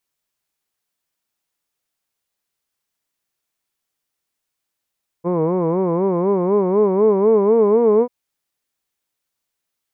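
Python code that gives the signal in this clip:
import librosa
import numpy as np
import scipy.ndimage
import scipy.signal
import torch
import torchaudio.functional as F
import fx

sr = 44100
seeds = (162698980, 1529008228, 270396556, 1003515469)

y = fx.vowel(sr, seeds[0], length_s=2.84, word='hood', hz=166.0, glide_st=5.5, vibrato_hz=4.0, vibrato_st=1.35)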